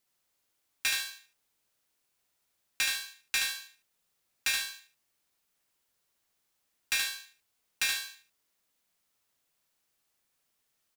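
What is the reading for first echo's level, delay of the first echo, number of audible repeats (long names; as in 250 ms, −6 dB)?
−4.0 dB, 74 ms, 3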